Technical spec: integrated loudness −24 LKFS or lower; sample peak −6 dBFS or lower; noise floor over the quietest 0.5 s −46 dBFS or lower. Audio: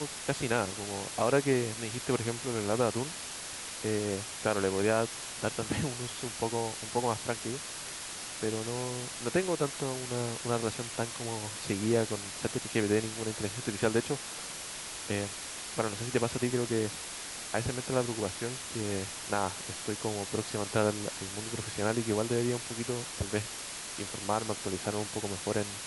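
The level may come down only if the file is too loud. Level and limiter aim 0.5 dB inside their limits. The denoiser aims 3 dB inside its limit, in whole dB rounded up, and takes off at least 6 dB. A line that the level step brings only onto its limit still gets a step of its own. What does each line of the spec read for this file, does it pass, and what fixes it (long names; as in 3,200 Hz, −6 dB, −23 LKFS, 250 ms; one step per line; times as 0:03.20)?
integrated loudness −33.0 LKFS: in spec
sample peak −12.5 dBFS: in spec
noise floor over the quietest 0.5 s −41 dBFS: out of spec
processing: broadband denoise 8 dB, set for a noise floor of −41 dBFS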